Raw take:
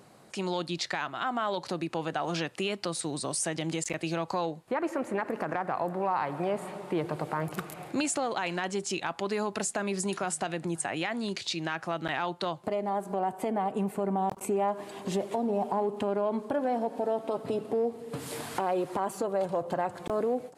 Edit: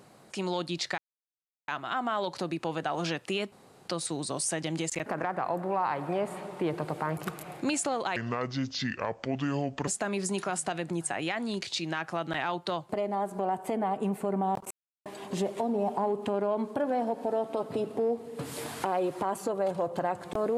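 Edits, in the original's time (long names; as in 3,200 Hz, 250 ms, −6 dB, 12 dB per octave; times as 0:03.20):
0:00.98: splice in silence 0.70 s
0:02.82: splice in room tone 0.36 s
0:04.00–0:05.37: remove
0:08.47–0:09.62: play speed 67%
0:14.45–0:14.80: silence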